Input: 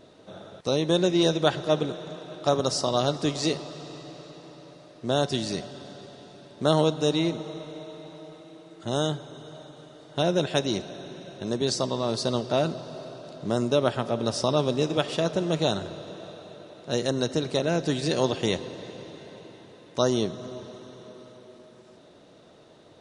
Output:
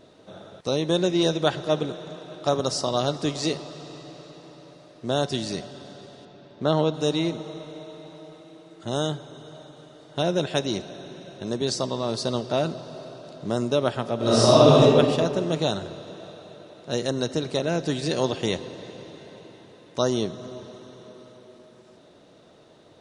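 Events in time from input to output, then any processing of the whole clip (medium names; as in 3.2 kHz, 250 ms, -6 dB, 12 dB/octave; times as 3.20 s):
6.25–6.94 s: distance through air 130 m
14.17–14.81 s: reverb throw, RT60 1.9 s, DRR -10 dB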